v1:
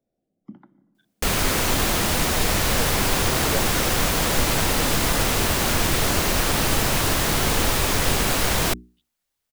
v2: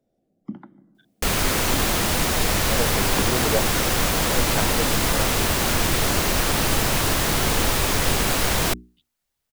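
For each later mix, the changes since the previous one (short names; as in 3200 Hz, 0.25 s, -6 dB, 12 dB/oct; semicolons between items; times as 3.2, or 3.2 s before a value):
speech +7.0 dB; first sound +8.5 dB; reverb: off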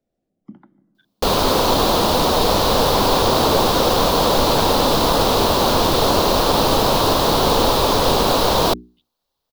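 first sound -6.0 dB; second sound: add graphic EQ 250/500/1000/2000/4000/8000 Hz +4/+9/+11/-11/+11/-7 dB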